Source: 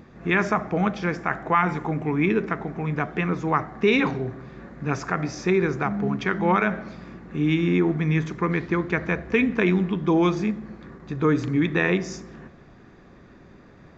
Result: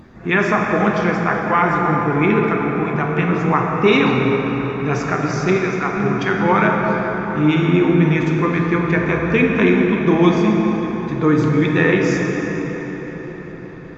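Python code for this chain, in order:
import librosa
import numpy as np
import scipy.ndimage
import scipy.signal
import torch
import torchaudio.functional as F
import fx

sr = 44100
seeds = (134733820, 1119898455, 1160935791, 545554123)

y = fx.spec_quant(x, sr, step_db=15)
y = fx.highpass(y, sr, hz=790.0, slope=12, at=(5.56, 5.97))
y = fx.echo_wet_lowpass(y, sr, ms=192, feedback_pct=81, hz=3300.0, wet_db=-15.5)
y = fx.rev_plate(y, sr, seeds[0], rt60_s=4.9, hf_ratio=0.5, predelay_ms=0, drr_db=0.0)
y = y * 10.0 ** (4.5 / 20.0)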